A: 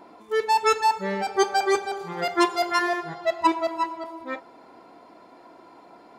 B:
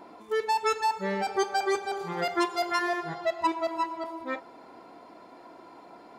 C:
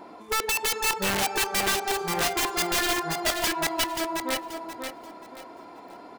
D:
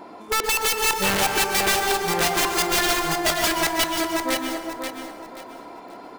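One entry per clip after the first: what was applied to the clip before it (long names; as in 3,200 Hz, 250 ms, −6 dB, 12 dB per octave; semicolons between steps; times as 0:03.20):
downward compressor 2 to 1, threshold −27 dBFS, peak gain reduction 7.5 dB
wrap-around overflow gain 23.5 dB; repeating echo 532 ms, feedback 28%, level −6 dB; level +3.5 dB
dense smooth reverb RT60 1.1 s, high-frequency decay 0.6×, pre-delay 110 ms, DRR 5 dB; level +3.5 dB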